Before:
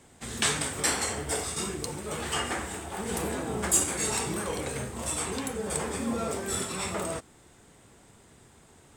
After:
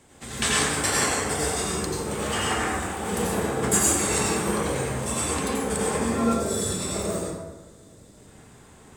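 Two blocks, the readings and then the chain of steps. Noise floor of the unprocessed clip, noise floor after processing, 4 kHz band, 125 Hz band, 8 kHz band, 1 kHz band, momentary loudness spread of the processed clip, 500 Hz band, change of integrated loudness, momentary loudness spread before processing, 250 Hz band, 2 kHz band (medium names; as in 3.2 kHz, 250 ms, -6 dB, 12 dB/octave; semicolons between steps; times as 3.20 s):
-57 dBFS, -51 dBFS, +4.0 dB, +6.5 dB, +4.0 dB, +6.5 dB, 7 LU, +6.5 dB, +5.5 dB, 9 LU, +7.0 dB, +5.5 dB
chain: time-frequency box 6.24–8.17 s, 680–3400 Hz -8 dB; plate-style reverb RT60 1.2 s, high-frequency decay 0.5×, pre-delay 75 ms, DRR -5 dB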